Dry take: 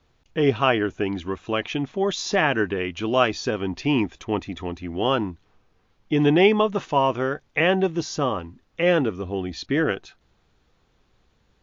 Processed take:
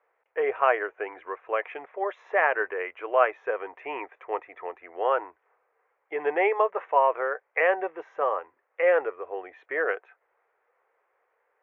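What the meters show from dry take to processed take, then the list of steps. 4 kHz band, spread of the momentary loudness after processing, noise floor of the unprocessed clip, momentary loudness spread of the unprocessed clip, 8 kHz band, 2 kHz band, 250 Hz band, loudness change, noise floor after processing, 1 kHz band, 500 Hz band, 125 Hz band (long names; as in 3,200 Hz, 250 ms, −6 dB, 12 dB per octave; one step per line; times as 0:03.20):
below −20 dB, 14 LU, −65 dBFS, 10 LU, can't be measured, −2.0 dB, −20.5 dB, −4.0 dB, −75 dBFS, −0.5 dB, −3.0 dB, below −40 dB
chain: elliptic band-pass filter 470–2,100 Hz, stop band 40 dB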